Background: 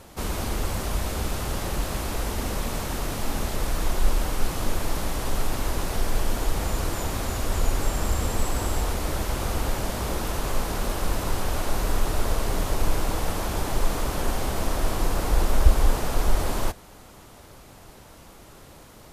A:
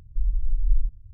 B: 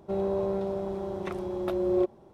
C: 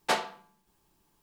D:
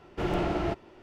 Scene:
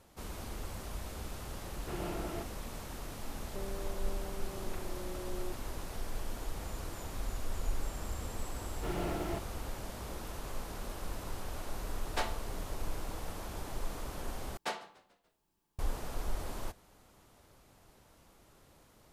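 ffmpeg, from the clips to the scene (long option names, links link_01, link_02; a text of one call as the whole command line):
ffmpeg -i bed.wav -i cue0.wav -i cue1.wav -i cue2.wav -i cue3.wav -filter_complex "[4:a]asplit=2[link_01][link_02];[3:a]asplit=2[link_03][link_04];[0:a]volume=-14.5dB[link_05];[2:a]acompressor=threshold=-40dB:ratio=6:attack=3.2:release=140:knee=1:detection=peak[link_06];[link_02]aeval=exprs='val(0)*gte(abs(val(0)),0.00631)':channel_layout=same[link_07];[link_04]asplit=5[link_08][link_09][link_10][link_11][link_12];[link_09]adelay=145,afreqshift=-60,volume=-21dB[link_13];[link_10]adelay=290,afreqshift=-120,volume=-27.2dB[link_14];[link_11]adelay=435,afreqshift=-180,volume=-33.4dB[link_15];[link_12]adelay=580,afreqshift=-240,volume=-39.6dB[link_16];[link_08][link_13][link_14][link_15][link_16]amix=inputs=5:normalize=0[link_17];[link_05]asplit=2[link_18][link_19];[link_18]atrim=end=14.574[link_20];[link_17]atrim=end=1.22,asetpts=PTS-STARTPTS,volume=-10.5dB[link_21];[link_19]atrim=start=15.786[link_22];[link_01]atrim=end=1.02,asetpts=PTS-STARTPTS,volume=-11.5dB,afade=type=in:duration=0.004:curve=hsin,afade=type=out:start_time=1.016:duration=0.004:curve=hsin,adelay=1690[link_23];[link_06]atrim=end=2.33,asetpts=PTS-STARTPTS,volume=-2.5dB,afade=type=in:duration=0.004:curve=hsin,afade=type=out:start_time=2.326:duration=0.004:curve=hsin,adelay=3470[link_24];[1:a]atrim=end=1.13,asetpts=PTS-STARTPTS,volume=-16.5dB,afade=type=in:duration=0.004:curve=hsin,afade=type=out:start_time=1.126:duration=0.004:curve=hsin,adelay=6990[link_25];[link_07]atrim=end=1.02,asetpts=PTS-STARTPTS,volume=-8.5dB,afade=type=in:duration=0.004:curve=hsin,afade=type=out:start_time=1.016:duration=0.004:curve=hsin,adelay=8650[link_26];[link_03]atrim=end=1.22,asetpts=PTS-STARTPTS,volume=-8.5dB,afade=type=in:duration=0.004:curve=hsin,afade=type=out:start_time=1.216:duration=0.004:curve=hsin,adelay=12080[link_27];[link_20][link_21]acrossfade=duration=0.004:curve1=hsin:curve2=hsin[link_28];[link_28][link_22]acrossfade=duration=0.004:curve1=hsin:curve2=hsin[link_29];[link_29][link_23][link_24][link_25][link_26][link_27]amix=inputs=6:normalize=0" out.wav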